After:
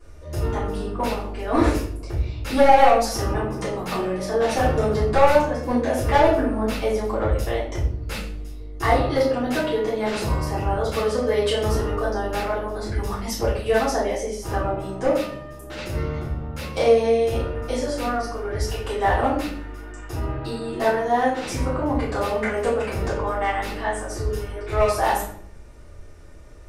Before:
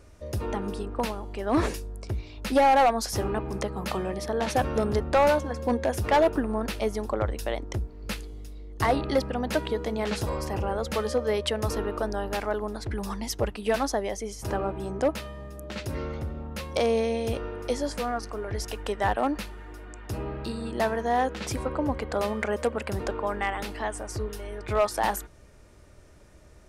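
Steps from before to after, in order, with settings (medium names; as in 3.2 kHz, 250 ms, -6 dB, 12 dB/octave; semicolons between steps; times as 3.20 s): simulated room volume 85 m³, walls mixed, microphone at 3.2 m; trim -8 dB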